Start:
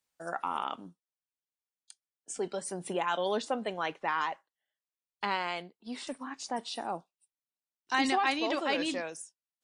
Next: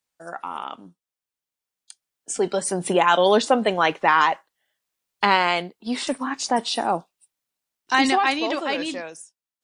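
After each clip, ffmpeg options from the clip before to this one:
-af "dynaudnorm=f=390:g=11:m=14dB,volume=1.5dB"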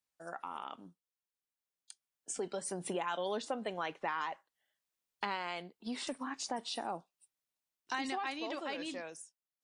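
-af "acompressor=threshold=-30dB:ratio=2.5,volume=-8.5dB"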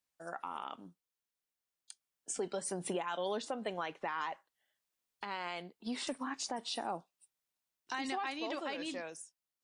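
-af "alimiter=level_in=3dB:limit=-24dB:level=0:latency=1:release=189,volume=-3dB,volume=1dB"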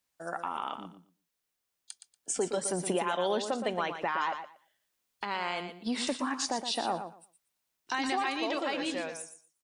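-af "aecho=1:1:118|236|354:0.355|0.0639|0.0115,volume=6.5dB"

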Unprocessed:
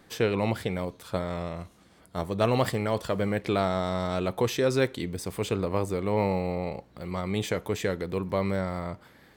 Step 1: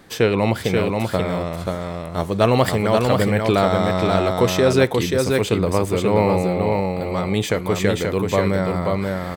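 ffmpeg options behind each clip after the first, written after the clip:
-af "areverse,acompressor=mode=upward:threshold=-35dB:ratio=2.5,areverse,aecho=1:1:533:0.668,volume=8dB"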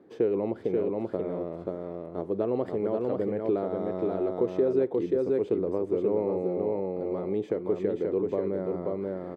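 -af "acompressor=threshold=-19dB:ratio=2.5,bandpass=f=370:t=q:w=2.5:csg=0"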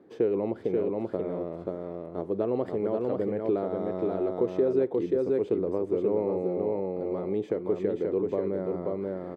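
-af anull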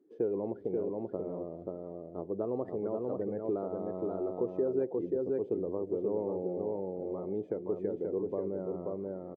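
-af "aecho=1:1:244:0.106,afftdn=nr=17:nf=-44,volume=-6dB"

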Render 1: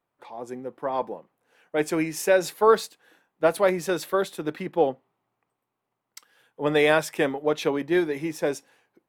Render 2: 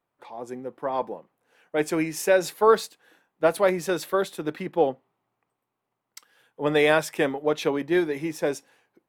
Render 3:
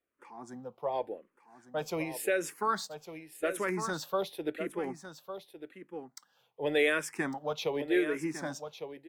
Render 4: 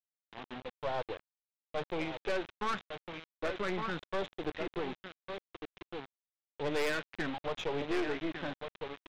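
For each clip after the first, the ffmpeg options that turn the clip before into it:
-af anull
-filter_complex "[0:a]aecho=1:1:1154:0.266,acrossover=split=1400[a][b];[a]alimiter=limit=-16dB:level=0:latency=1:release=87[c];[c][b]amix=inputs=2:normalize=0,asplit=2[d][e];[e]afreqshift=-0.88[f];[d][f]amix=inputs=2:normalize=1,volume=-3.5dB"
-af "aresample=8000,acrusher=bits=6:mix=0:aa=0.000001,aresample=44100,aeval=exprs='(tanh(39.8*val(0)+0.7)-tanh(0.7))/39.8':c=same,volume=2.5dB"

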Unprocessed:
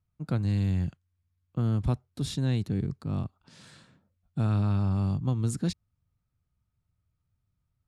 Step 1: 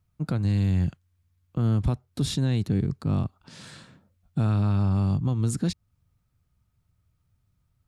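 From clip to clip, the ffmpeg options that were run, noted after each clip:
-af "alimiter=limit=-23.5dB:level=0:latency=1:release=258,volume=7.5dB"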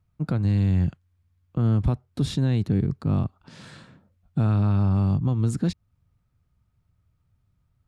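-af "highshelf=f=4k:g=-9.5,volume=2dB"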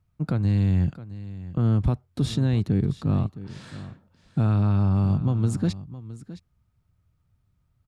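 -af "aecho=1:1:665:0.168"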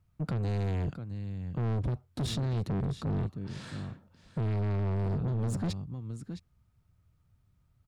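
-af "asoftclip=type=tanh:threshold=-28dB"

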